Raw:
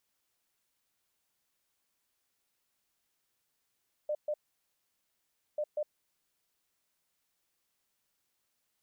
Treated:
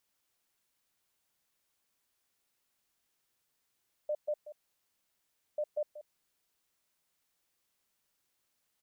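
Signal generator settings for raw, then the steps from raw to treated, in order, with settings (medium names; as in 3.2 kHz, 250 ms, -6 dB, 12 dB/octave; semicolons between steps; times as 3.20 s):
beep pattern sine 600 Hz, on 0.06 s, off 0.13 s, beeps 2, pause 1.24 s, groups 2, -29.5 dBFS
delay 183 ms -13.5 dB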